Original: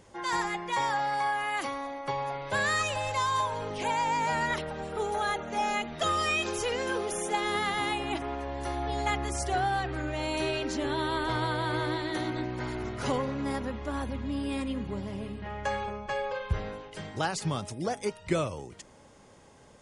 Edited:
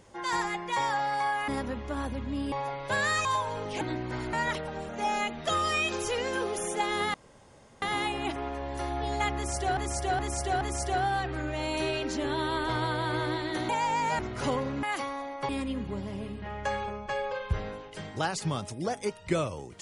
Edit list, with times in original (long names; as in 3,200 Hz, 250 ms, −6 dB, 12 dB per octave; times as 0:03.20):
0:01.48–0:02.14: swap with 0:13.45–0:14.49
0:02.87–0:03.30: remove
0:03.86–0:04.36: swap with 0:12.29–0:12.81
0:04.92–0:05.43: remove
0:07.68: splice in room tone 0.68 s
0:09.21–0:09.63: repeat, 4 plays